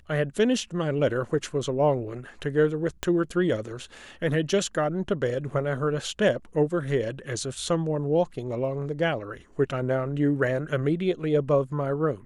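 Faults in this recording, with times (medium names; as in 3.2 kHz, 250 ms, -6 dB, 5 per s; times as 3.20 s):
3.03 s: pop -13 dBFS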